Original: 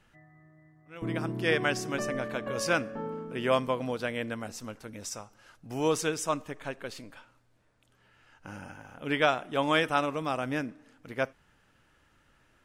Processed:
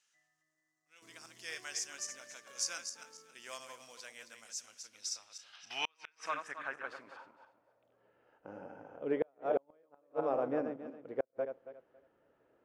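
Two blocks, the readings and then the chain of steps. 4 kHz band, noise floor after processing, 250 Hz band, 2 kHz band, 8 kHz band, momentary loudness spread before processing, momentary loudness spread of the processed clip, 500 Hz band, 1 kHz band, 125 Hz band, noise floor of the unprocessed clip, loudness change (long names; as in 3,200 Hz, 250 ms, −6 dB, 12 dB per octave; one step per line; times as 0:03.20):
−7.0 dB, −79 dBFS, −12.0 dB, −12.5 dB, −1.0 dB, 16 LU, 17 LU, −7.5 dB, −11.0 dB, −21.5 dB, −66 dBFS, −9.0 dB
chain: feedback delay that plays each chunk backwards 138 ms, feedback 45%, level −7 dB
floating-point word with a short mantissa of 4 bits
dynamic equaliser 3,200 Hz, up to −6 dB, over −48 dBFS, Q 1.9
gain on a spectral selection 0:05.53–0:06.25, 640–6,300 Hz +10 dB
band-pass filter sweep 6,400 Hz → 490 Hz, 0:04.73–0:08.14
gate with flip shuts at −24 dBFS, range −41 dB
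level +4 dB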